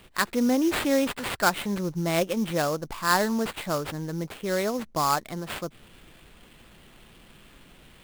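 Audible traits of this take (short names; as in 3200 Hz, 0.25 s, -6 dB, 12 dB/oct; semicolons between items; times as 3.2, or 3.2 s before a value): aliases and images of a low sample rate 6000 Hz, jitter 20%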